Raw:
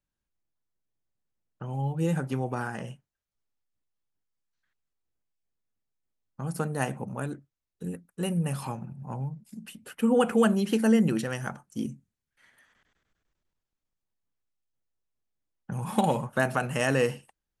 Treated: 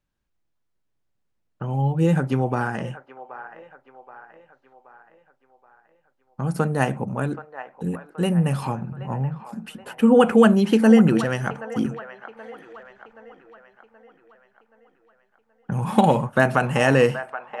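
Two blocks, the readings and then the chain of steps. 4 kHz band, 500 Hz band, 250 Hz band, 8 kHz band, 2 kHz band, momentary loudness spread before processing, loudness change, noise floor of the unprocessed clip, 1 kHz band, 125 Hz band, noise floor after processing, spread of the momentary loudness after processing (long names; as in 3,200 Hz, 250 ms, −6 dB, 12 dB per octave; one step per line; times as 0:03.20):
+5.5 dB, +8.0 dB, +8.0 dB, +0.5 dB, +7.5 dB, 17 LU, +7.5 dB, below −85 dBFS, +8.0 dB, +8.0 dB, −73 dBFS, 23 LU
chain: high-shelf EQ 6,000 Hz −11.5 dB
delay with a band-pass on its return 776 ms, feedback 49%, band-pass 1,100 Hz, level −11 dB
level +8 dB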